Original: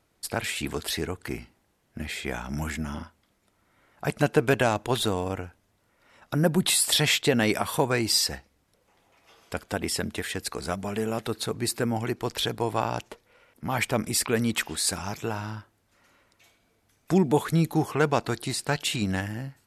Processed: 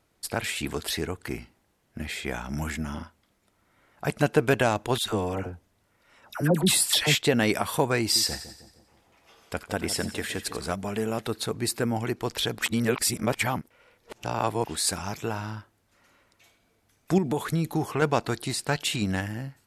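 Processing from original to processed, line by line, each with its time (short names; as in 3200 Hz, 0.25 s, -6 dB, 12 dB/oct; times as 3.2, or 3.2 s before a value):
4.98–7.15 dispersion lows, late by 79 ms, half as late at 980 Hz
8–10.72 split-band echo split 1000 Hz, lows 0.156 s, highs 88 ms, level -12 dB
12.59–14.65 reverse
17.18–18.02 compressor, threshold -21 dBFS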